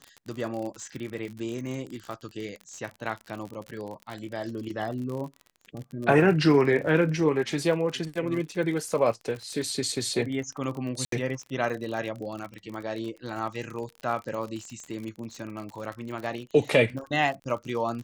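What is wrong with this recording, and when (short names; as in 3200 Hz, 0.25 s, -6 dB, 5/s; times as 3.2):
crackle 45/s -33 dBFS
11.05–11.12 gap 73 ms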